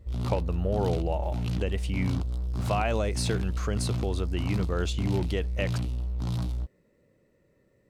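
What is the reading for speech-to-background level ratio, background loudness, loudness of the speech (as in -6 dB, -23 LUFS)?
0.0 dB, -32.0 LUFS, -32.0 LUFS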